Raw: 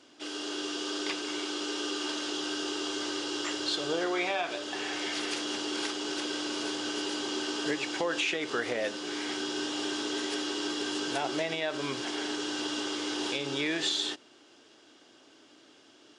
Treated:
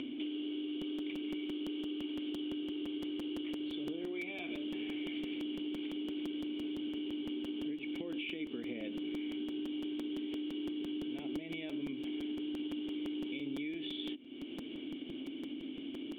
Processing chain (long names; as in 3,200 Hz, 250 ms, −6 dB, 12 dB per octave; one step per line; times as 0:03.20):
formant resonators in series i
upward compression, threshold −52 dBFS
high-pass filter 95 Hz 6 dB per octave
downward compressor 12 to 1, threshold −55 dBFS, peak gain reduction 20 dB
regular buffer underruns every 0.17 s, samples 256, repeat, from 0:00.81
level +18 dB